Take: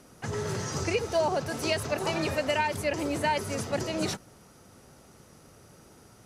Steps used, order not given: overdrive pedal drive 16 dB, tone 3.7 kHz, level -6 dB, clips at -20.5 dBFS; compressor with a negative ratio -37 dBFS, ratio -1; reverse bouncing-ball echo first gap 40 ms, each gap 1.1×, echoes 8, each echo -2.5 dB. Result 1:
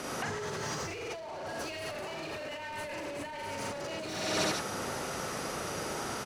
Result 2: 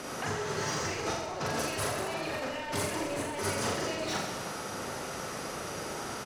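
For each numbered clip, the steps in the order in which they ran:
reverse bouncing-ball echo > overdrive pedal > compressor with a negative ratio; overdrive pedal > compressor with a negative ratio > reverse bouncing-ball echo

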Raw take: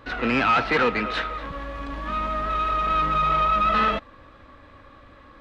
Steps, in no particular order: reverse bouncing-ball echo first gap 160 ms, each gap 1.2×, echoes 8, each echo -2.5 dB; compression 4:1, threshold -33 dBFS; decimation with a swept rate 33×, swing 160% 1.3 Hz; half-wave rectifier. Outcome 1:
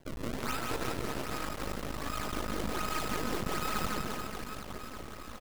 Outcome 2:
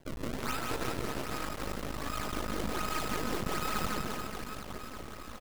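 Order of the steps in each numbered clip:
compression > decimation with a swept rate > reverse bouncing-ball echo > half-wave rectifier; decimation with a swept rate > compression > reverse bouncing-ball echo > half-wave rectifier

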